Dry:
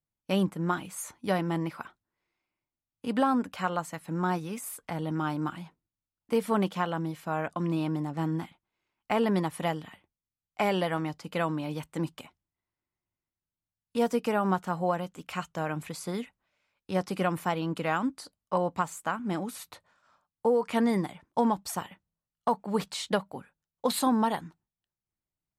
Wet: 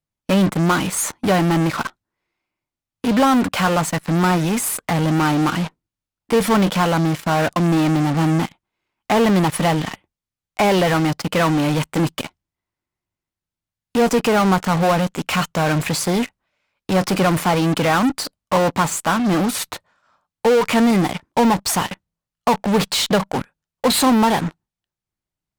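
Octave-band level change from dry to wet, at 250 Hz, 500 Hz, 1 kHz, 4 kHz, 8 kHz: +12.5, +11.0, +11.0, +16.0, +16.5 decibels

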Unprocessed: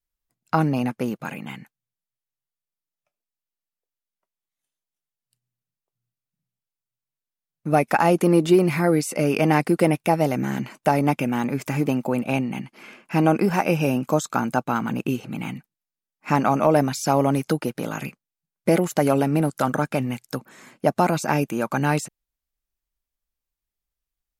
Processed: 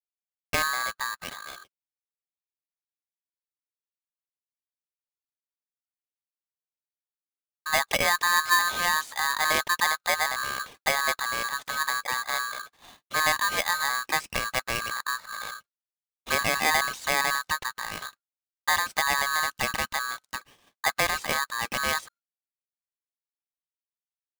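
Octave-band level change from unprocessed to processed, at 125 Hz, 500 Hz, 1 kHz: −21.0, −13.5, −3.0 decibels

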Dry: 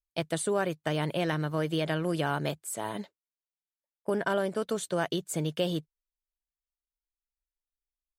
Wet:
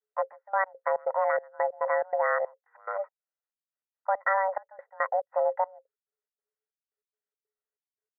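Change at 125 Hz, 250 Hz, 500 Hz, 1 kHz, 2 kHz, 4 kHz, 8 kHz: below −40 dB, below −40 dB, +2.5 dB, +8.0 dB, +3.5 dB, below −40 dB, below −40 dB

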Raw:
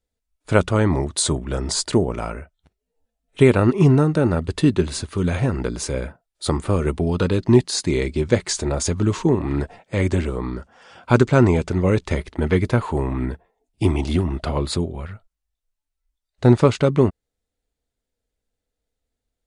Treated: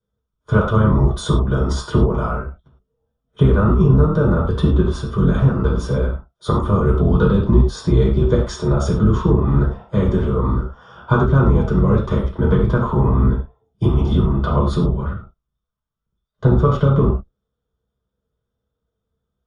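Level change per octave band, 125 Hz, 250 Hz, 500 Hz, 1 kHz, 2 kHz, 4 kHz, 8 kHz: +5.0 dB, +2.0 dB, +0.5 dB, +3.5 dB, −1.5 dB, −5.5 dB, below −10 dB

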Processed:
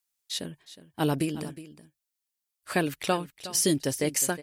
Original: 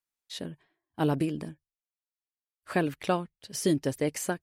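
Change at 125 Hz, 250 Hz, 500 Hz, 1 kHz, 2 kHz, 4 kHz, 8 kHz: 0.0, 0.0, +0.5, +1.0, +3.0, +7.0, +10.0 decibels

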